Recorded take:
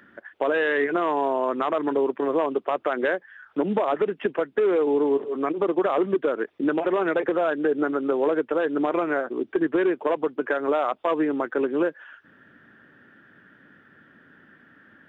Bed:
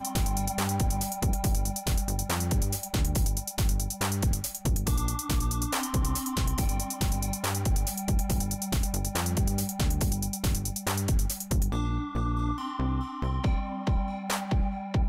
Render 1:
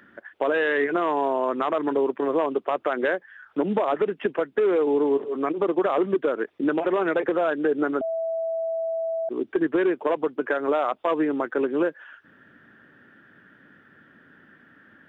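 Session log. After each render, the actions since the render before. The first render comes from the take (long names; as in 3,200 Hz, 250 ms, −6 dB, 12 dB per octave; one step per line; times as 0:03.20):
0:08.01–0:09.29: beep over 656 Hz −24 dBFS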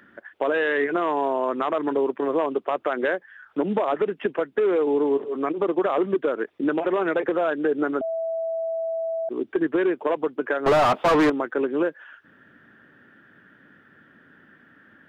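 0:10.66–0:11.30: mid-hump overdrive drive 34 dB, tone 1,700 Hz, clips at −11 dBFS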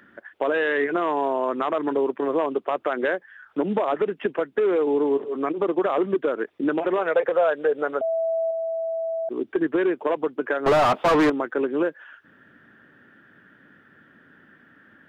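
0:06.98–0:08.51: low shelf with overshoot 410 Hz −6 dB, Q 3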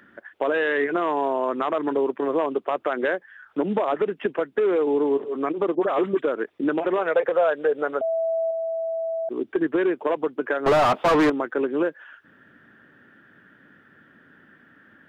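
0:05.75–0:06.22: all-pass dispersion highs, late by 43 ms, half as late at 1,100 Hz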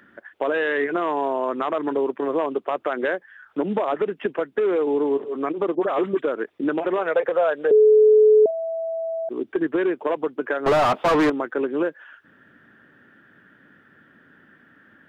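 0:07.71–0:08.46: beep over 429 Hz −10 dBFS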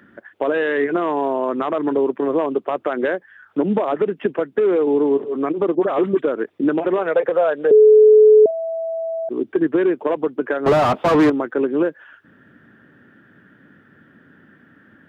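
high-pass filter 57 Hz
low-shelf EQ 420 Hz +8.5 dB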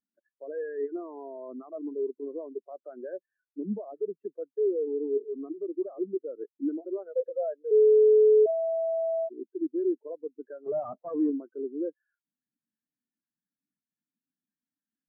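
reversed playback
downward compressor 4 to 1, threshold −26 dBFS, peak gain reduction 14.5 dB
reversed playback
every bin expanded away from the loudest bin 2.5 to 1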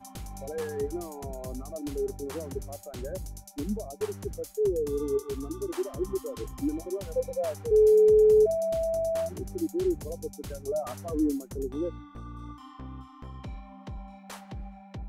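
mix in bed −13.5 dB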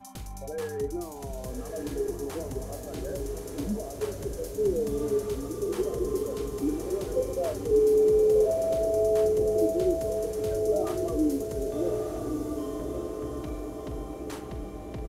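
double-tracking delay 43 ms −11 dB
on a send: feedback delay with all-pass diffusion 1,193 ms, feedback 58%, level −4.5 dB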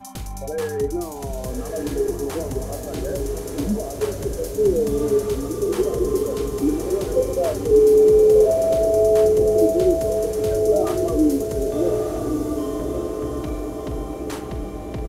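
level +8 dB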